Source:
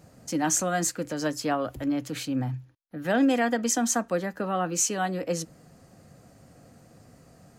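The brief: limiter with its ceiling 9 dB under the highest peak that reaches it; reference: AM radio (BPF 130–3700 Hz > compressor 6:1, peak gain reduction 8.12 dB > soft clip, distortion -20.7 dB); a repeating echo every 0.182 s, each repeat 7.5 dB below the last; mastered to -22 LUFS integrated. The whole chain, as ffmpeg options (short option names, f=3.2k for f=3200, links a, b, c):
-af "alimiter=limit=-23dB:level=0:latency=1,highpass=130,lowpass=3.7k,aecho=1:1:182|364|546|728|910:0.422|0.177|0.0744|0.0312|0.0131,acompressor=threshold=-33dB:ratio=6,asoftclip=threshold=-29dB,volume=16.5dB"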